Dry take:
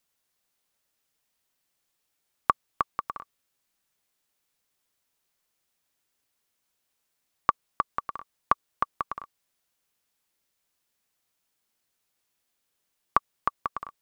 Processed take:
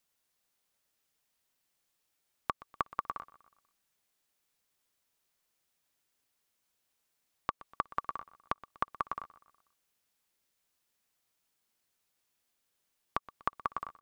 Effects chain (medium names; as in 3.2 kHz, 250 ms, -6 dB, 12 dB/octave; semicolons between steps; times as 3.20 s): compression, threshold -23 dBFS, peak gain reduction 8 dB; peak limiter -10.5 dBFS, peak gain reduction 4.5 dB; feedback delay 122 ms, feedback 50%, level -19.5 dB; trim -2 dB